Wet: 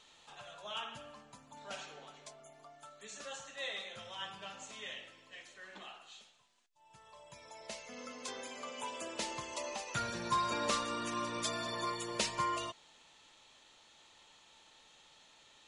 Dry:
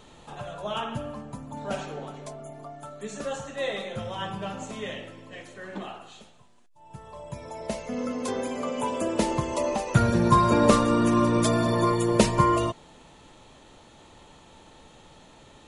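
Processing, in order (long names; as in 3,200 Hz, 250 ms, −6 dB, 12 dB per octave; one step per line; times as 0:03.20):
first-order pre-emphasis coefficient 0.97
in parallel at −6.5 dB: hard clipping −31 dBFS, distortion −11 dB
on the sum: high-frequency loss of the air 120 metres
level +2 dB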